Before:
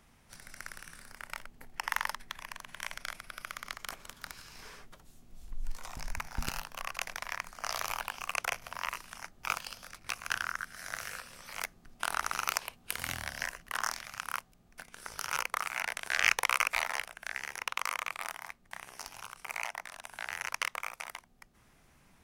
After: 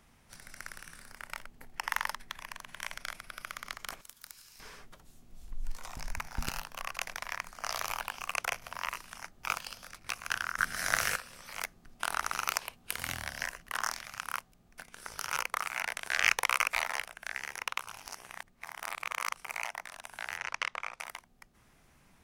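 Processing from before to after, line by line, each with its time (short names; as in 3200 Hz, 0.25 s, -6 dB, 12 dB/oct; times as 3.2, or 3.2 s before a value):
4.01–4.6 pre-emphasis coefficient 0.8
10.58–11.16 gain +10.5 dB
17.8–19.34 reverse
20.37–21 LPF 5200 Hz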